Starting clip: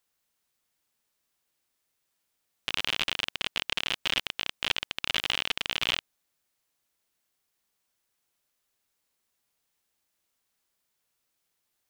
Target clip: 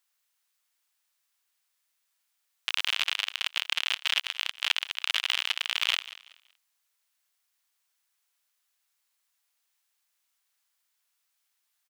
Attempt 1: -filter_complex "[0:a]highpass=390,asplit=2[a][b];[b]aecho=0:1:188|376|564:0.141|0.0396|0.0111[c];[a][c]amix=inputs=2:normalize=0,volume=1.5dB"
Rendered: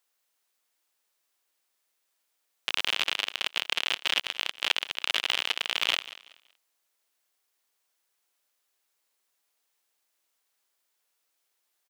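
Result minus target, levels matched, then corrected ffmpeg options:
500 Hz band +9.5 dB
-filter_complex "[0:a]highpass=1k,asplit=2[a][b];[b]aecho=0:1:188|376|564:0.141|0.0396|0.0111[c];[a][c]amix=inputs=2:normalize=0,volume=1.5dB"

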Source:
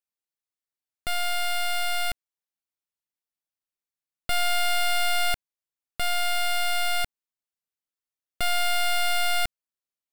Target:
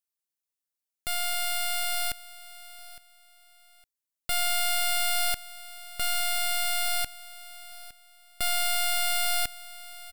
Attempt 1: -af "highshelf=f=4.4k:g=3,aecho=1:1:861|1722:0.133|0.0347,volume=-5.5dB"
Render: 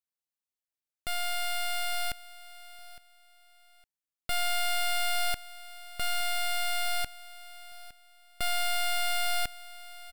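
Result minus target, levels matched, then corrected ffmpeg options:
8000 Hz band -3.0 dB
-af "highshelf=f=4.4k:g=11,aecho=1:1:861|1722:0.133|0.0347,volume=-5.5dB"

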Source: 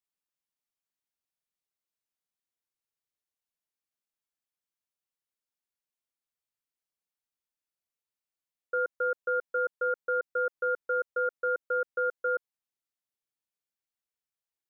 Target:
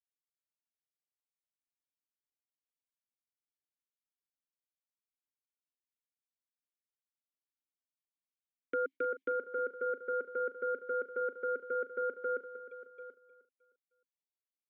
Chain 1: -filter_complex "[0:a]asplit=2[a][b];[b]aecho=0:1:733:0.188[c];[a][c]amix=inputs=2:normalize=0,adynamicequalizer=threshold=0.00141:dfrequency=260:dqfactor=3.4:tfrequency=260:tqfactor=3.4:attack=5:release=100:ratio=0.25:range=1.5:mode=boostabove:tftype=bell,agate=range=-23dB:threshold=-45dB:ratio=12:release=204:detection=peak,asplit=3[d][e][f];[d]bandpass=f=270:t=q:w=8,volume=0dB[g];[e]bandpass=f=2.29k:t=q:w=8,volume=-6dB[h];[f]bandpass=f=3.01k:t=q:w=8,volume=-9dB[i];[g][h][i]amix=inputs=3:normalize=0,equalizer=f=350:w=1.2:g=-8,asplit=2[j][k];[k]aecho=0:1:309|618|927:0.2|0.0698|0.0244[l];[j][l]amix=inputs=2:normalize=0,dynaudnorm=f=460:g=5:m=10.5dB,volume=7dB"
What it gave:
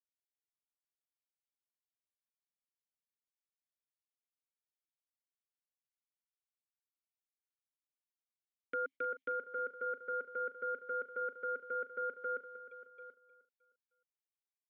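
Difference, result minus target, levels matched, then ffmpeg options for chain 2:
250 Hz band -6.0 dB
-filter_complex "[0:a]asplit=2[a][b];[b]aecho=0:1:733:0.188[c];[a][c]amix=inputs=2:normalize=0,adynamicequalizer=threshold=0.00141:dfrequency=260:dqfactor=3.4:tfrequency=260:tqfactor=3.4:attack=5:release=100:ratio=0.25:range=1.5:mode=boostabove:tftype=bell,agate=range=-23dB:threshold=-45dB:ratio=12:release=204:detection=peak,asplit=3[d][e][f];[d]bandpass=f=270:t=q:w=8,volume=0dB[g];[e]bandpass=f=2.29k:t=q:w=8,volume=-6dB[h];[f]bandpass=f=3.01k:t=q:w=8,volume=-9dB[i];[g][h][i]amix=inputs=3:normalize=0,equalizer=f=350:w=1.2:g=4,asplit=2[j][k];[k]aecho=0:1:309|618|927:0.2|0.0698|0.0244[l];[j][l]amix=inputs=2:normalize=0,dynaudnorm=f=460:g=5:m=10.5dB,volume=7dB"

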